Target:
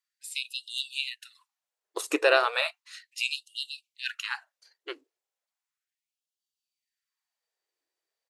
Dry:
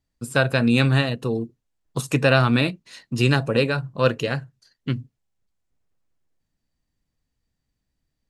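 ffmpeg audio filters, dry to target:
ffmpeg -i in.wav -filter_complex "[0:a]asplit=2[link_01][link_02];[link_02]asetrate=22050,aresample=44100,atempo=2,volume=-16dB[link_03];[link_01][link_03]amix=inputs=2:normalize=0,afftfilt=real='re*gte(b*sr/1024,300*pow(2800/300,0.5+0.5*sin(2*PI*0.35*pts/sr)))':imag='im*gte(b*sr/1024,300*pow(2800/300,0.5+0.5*sin(2*PI*0.35*pts/sr)))':win_size=1024:overlap=0.75,volume=-2.5dB" out.wav

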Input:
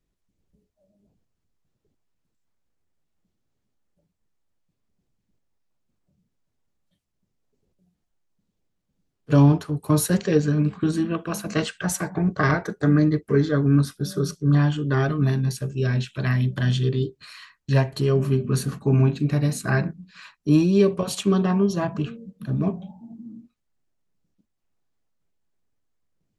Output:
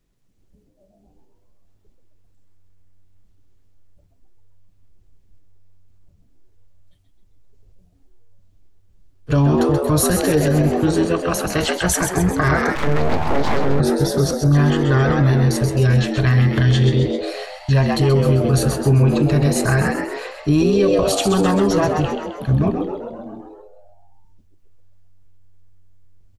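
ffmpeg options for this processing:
ffmpeg -i in.wav -filter_complex "[0:a]asplit=8[link_01][link_02][link_03][link_04][link_05][link_06][link_07][link_08];[link_02]adelay=131,afreqshift=96,volume=-6.5dB[link_09];[link_03]adelay=262,afreqshift=192,volume=-11.9dB[link_10];[link_04]adelay=393,afreqshift=288,volume=-17.2dB[link_11];[link_05]adelay=524,afreqshift=384,volume=-22.6dB[link_12];[link_06]adelay=655,afreqshift=480,volume=-27.9dB[link_13];[link_07]adelay=786,afreqshift=576,volume=-33.3dB[link_14];[link_08]adelay=917,afreqshift=672,volume=-38.6dB[link_15];[link_01][link_09][link_10][link_11][link_12][link_13][link_14][link_15]amix=inputs=8:normalize=0,asubboost=boost=11.5:cutoff=56,asettb=1/sr,asplit=3[link_16][link_17][link_18];[link_16]atrim=end=12.754[link_19];[link_17]atrim=start=12.75:end=13.8,asetpts=PTS-STARTPTS,afade=type=in:duration=0.004:curve=qsin,afade=type=out:start_time=1.046:duration=0.004:curve=qsin,aeval=exprs='abs(val(0))':channel_layout=same[link_20];[link_18]atrim=start=13.796[link_21];[link_19][link_20]acrossfade=duration=0.004:curve1=hsin:curve2=qsin[link_22];[link_22][link_21]acrossfade=duration=0.004:curve1=qsin:curve2=hsin,alimiter=level_in=14.5dB:limit=-1dB:release=50:level=0:latency=1,volume=-6.5dB" out.wav

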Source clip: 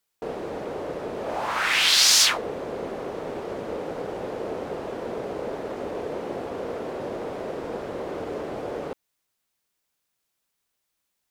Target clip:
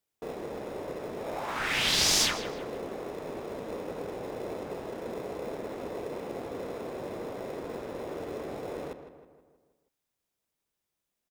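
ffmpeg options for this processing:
ffmpeg -i in.wav -filter_complex "[0:a]bandreject=frequency=4300:width=28,asplit=2[link_01][link_02];[link_02]acrusher=samples=29:mix=1:aa=0.000001,volume=-9.5dB[link_03];[link_01][link_03]amix=inputs=2:normalize=0,asplit=2[link_04][link_05];[link_05]adelay=159,lowpass=frequency=2800:poles=1,volume=-10dB,asplit=2[link_06][link_07];[link_07]adelay=159,lowpass=frequency=2800:poles=1,volume=0.53,asplit=2[link_08][link_09];[link_09]adelay=159,lowpass=frequency=2800:poles=1,volume=0.53,asplit=2[link_10][link_11];[link_11]adelay=159,lowpass=frequency=2800:poles=1,volume=0.53,asplit=2[link_12][link_13];[link_13]adelay=159,lowpass=frequency=2800:poles=1,volume=0.53,asplit=2[link_14][link_15];[link_15]adelay=159,lowpass=frequency=2800:poles=1,volume=0.53[link_16];[link_04][link_06][link_08][link_10][link_12][link_14][link_16]amix=inputs=7:normalize=0,volume=-7.5dB" out.wav

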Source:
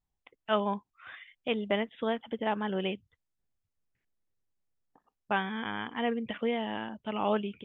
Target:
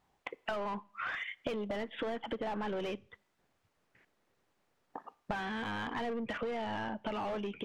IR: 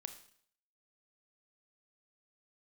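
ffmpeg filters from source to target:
-filter_complex "[0:a]asplit=2[link_01][link_02];[link_02]highpass=frequency=720:poles=1,volume=30dB,asoftclip=type=tanh:threshold=-13.5dB[link_03];[link_01][link_03]amix=inputs=2:normalize=0,lowpass=frequency=1000:poles=1,volume=-6dB,acompressor=threshold=-36dB:ratio=12,asplit=2[link_04][link_05];[1:a]atrim=start_sample=2205[link_06];[link_05][link_06]afir=irnorm=-1:irlink=0,volume=-10.5dB[link_07];[link_04][link_07]amix=inputs=2:normalize=0"

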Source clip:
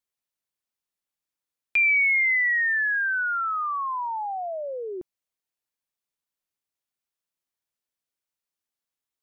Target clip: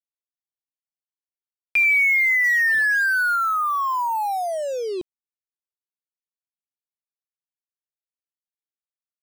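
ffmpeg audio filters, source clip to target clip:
ffmpeg -i in.wav -filter_complex "[0:a]asettb=1/sr,asplit=3[link_01][link_02][link_03];[link_01]atrim=end=2.444[link_04];[link_02]atrim=start=2.44:end=3.36,asetpts=PTS-STARTPTS,afade=type=in:duration=0.004:curve=qsin,afade=type=out:start_time=0.916:duration=0.004:curve=qsin,aeval=exprs='val(0)+0.5*0.0178*sgn(val(0))':channel_layout=same[link_05];[link_03]atrim=start=3.356[link_06];[link_04][link_05]acrossfade=duration=0.004:curve1=hsin:curve2=qsin[link_07];[link_07][link_06]acrossfade=duration=0.004:curve1=qsin:curve2=hsin,asplit=2[link_08][link_09];[link_09]alimiter=level_in=1.5dB:limit=-24dB:level=0:latency=1,volume=-1.5dB,volume=0dB[link_10];[link_08][link_10]amix=inputs=2:normalize=0,acrusher=bits=5:mix=0:aa=0.5" out.wav

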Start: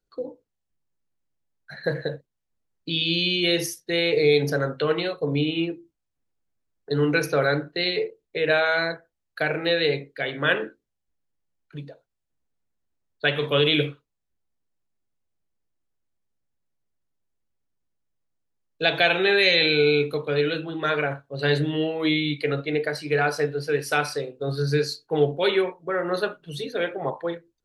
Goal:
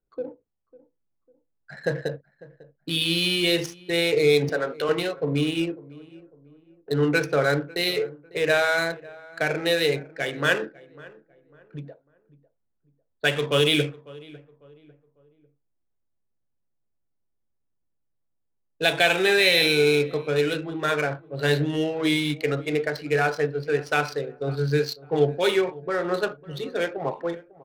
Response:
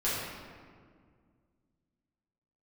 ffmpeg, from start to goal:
-filter_complex "[0:a]asettb=1/sr,asplit=3[link_01][link_02][link_03];[link_01]atrim=end=4.494[link_04];[link_02]atrim=start=4.49:end=4.89,asetpts=PTS-STARTPTS,afade=type=in:duration=0.004:curve=qsin,afade=type=out:start_time=0.396:duration=0.004:curve=qsin,highpass=330[link_05];[link_03]atrim=start=4.886[link_06];[link_04][link_05]acrossfade=duration=0.004:curve1=hsin:curve2=qsin[link_07];[link_07][link_06]acrossfade=duration=0.004:curve1=qsin:curve2=hsin,adynamicsmooth=sensitivity=6.5:basefreq=1600,asplit=2[link_08][link_09];[link_09]adelay=549,lowpass=frequency=1300:poles=1,volume=-20dB,asplit=2[link_10][link_11];[link_11]adelay=549,lowpass=frequency=1300:poles=1,volume=0.38,asplit=2[link_12][link_13];[link_13]adelay=549,lowpass=frequency=1300:poles=1,volume=0.38[link_14];[link_08][link_10][link_12][link_14]amix=inputs=4:normalize=0"

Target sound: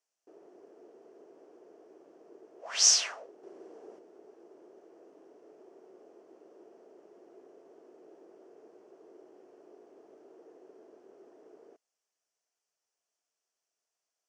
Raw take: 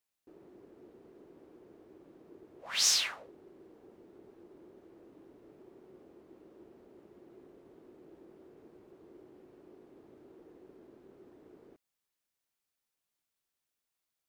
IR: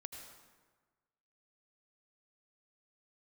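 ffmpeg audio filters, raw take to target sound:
-filter_complex "[0:a]highshelf=frequency=6100:gain=5.5,asettb=1/sr,asplit=3[link_01][link_02][link_03];[link_01]atrim=end=3.434[link_04];[link_02]atrim=start=3.43:end=3.99,asetpts=PTS-STARTPTS,afade=type=in:duration=0.004:curve=qsin,afade=type=out:start_time=0.556:duration=0.004:curve=qsin,acontrast=47[link_05];[link_03]atrim=start=3.986[link_06];[link_04][link_05]acrossfade=duration=0.004:curve1=hsin:curve2=qsin[link_07];[link_07][link_06]acrossfade=duration=0.004:curve1=qsin:curve2=hsin,highpass=360,equalizer=frequency=440:width_type=q:width=4:gain=6,equalizer=frequency=670:width_type=q:width=4:gain=8,equalizer=frequency=2200:width_type=q:width=4:gain=-4,equalizer=frequency=3800:width_type=q:width=4:gain=-9,equalizer=frequency=5800:width_type=q:width=4:gain=6,lowpass=frequency=7800:width=0.5412,lowpass=frequency=7800:width=1.3066"

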